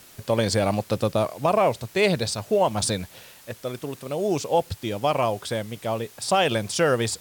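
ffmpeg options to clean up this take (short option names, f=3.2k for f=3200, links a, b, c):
-af "afwtdn=0.0035"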